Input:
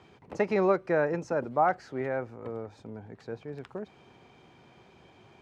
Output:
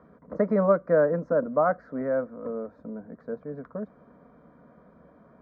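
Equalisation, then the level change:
low-pass filter 1,100 Hz 12 dB per octave
phaser with its sweep stopped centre 550 Hz, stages 8
+7.5 dB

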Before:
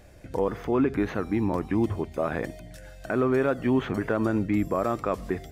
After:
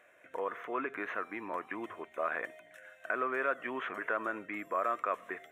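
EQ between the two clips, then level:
high-pass with resonance 830 Hz, resonance Q 4.9
low-pass filter 2,700 Hz 6 dB per octave
phaser with its sweep stopped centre 2,000 Hz, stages 4
0.0 dB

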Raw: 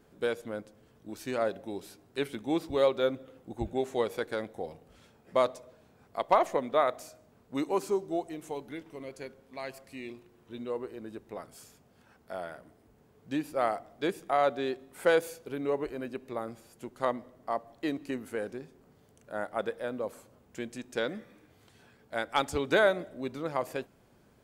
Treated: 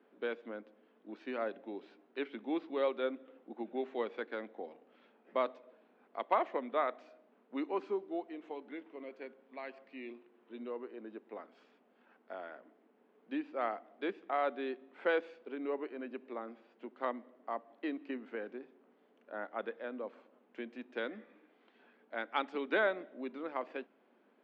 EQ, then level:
Butterworth high-pass 220 Hz 48 dB per octave
low-pass filter 3,100 Hz 24 dB per octave
dynamic equaliser 580 Hz, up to −4 dB, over −39 dBFS, Q 0.93
−4.0 dB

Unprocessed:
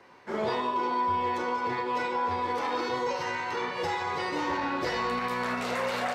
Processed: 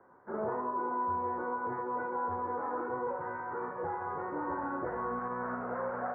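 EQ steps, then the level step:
elliptic low-pass filter 1,500 Hz, stop band 60 dB
−4.5 dB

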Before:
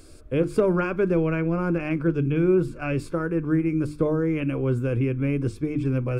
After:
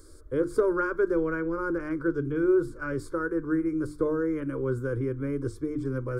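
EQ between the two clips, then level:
dynamic equaliser 1,500 Hz, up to +5 dB, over −49 dBFS, Q 6.6
phaser with its sweep stopped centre 710 Hz, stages 6
−1.5 dB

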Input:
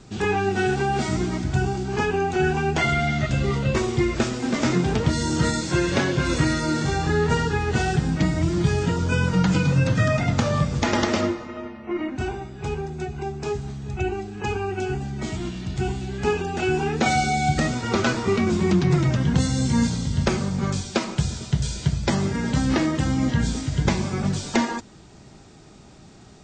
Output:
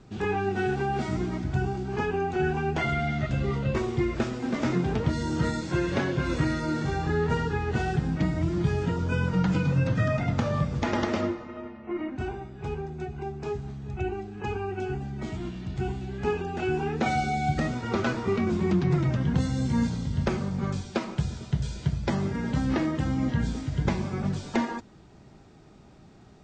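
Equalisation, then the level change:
low-pass filter 2,300 Hz 6 dB per octave
−4.5 dB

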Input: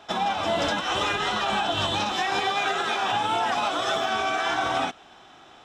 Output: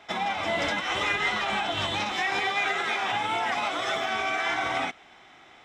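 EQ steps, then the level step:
parametric band 2,100 Hz +15 dB 0.27 octaves
−4.0 dB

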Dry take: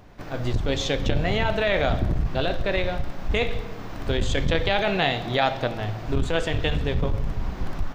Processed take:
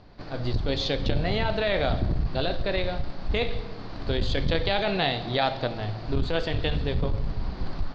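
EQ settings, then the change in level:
low-pass with resonance 4,500 Hz, resonance Q 6.7
high-shelf EQ 2,200 Hz −9.5 dB
−2.0 dB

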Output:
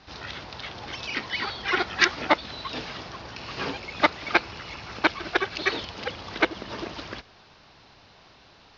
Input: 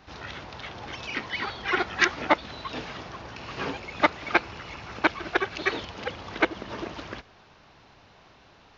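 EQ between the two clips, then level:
low-pass with resonance 5,000 Hz, resonance Q 2.2
0.0 dB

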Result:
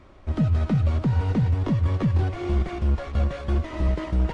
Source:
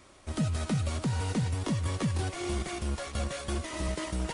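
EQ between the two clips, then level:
head-to-tape spacing loss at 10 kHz 29 dB
low-shelf EQ 71 Hz +11.5 dB
mains-hum notches 50/100 Hz
+6.0 dB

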